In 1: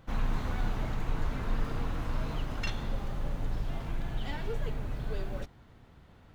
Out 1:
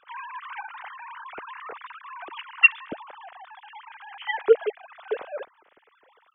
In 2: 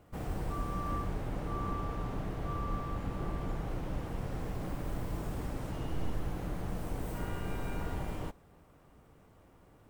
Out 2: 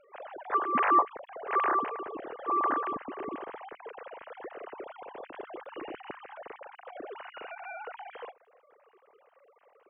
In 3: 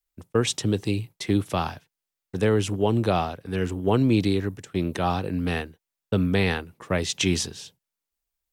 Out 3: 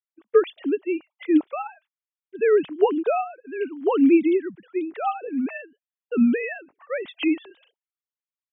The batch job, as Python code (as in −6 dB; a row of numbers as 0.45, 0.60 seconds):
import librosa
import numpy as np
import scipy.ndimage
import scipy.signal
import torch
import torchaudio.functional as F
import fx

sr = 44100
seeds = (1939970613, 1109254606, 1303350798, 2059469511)

y = fx.sine_speech(x, sr)
y = fx.upward_expand(y, sr, threshold_db=-33.0, expansion=1.5)
y = y * librosa.db_to_amplitude(4.0)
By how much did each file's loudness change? +13.5, +6.5, +2.0 LU